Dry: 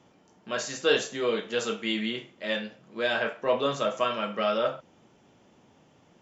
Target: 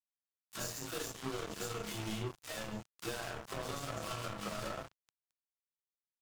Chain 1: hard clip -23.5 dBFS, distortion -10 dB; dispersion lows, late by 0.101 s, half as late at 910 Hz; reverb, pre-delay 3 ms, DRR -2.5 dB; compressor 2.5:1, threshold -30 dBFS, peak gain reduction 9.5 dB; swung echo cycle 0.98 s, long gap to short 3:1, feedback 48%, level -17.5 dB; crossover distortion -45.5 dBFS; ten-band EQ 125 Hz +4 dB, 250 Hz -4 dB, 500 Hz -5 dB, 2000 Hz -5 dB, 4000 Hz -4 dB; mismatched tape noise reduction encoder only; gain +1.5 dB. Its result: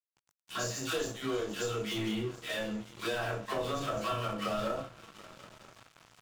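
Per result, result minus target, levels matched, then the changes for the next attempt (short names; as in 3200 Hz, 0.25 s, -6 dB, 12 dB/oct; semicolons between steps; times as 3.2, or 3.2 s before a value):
crossover distortion: distortion -11 dB; hard clip: distortion -7 dB
change: crossover distortion -36 dBFS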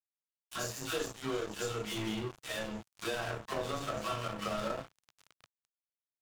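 hard clip: distortion -7 dB
change: hard clip -35 dBFS, distortion -3 dB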